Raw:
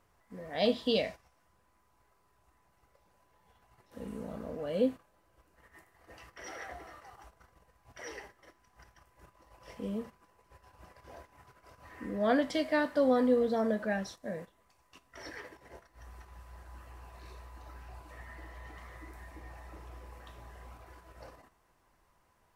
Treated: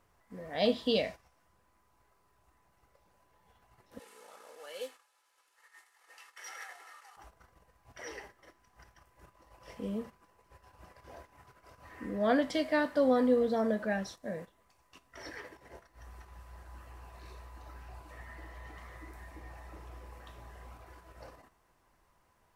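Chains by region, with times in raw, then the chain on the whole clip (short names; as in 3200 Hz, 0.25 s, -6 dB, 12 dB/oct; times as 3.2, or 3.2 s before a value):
3.99–7.17 CVSD 64 kbps + HPF 1100 Hz + comb 2.3 ms, depth 47%
whole clip: dry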